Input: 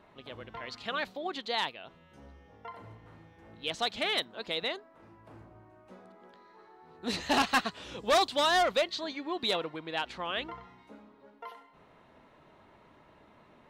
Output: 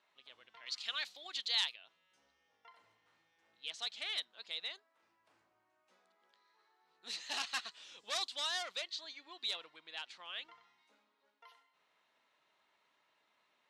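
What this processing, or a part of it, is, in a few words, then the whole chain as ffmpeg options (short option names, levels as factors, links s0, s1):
piezo pickup straight into a mixer: -filter_complex "[0:a]lowpass=6100,aderivative,asettb=1/sr,asplit=3[s0][s1][s2];[s0]atrim=end=0.664[s3];[s1]atrim=start=0.66:end=1.76,asetpts=PTS-STARTPTS,afade=t=in:d=0.004:c=qsin,afade=t=out:st=1.096:d=0.004:c=qsin,highshelf=f=2100:g=11.5[s4];[s2]atrim=start=1.756[s5];[s3][s4]acrossfade=d=0.004:c1=hsin:c2=qsin[s6];[s6][s5]acrossfade=d=0.004:c1=qsin:c2=hsin"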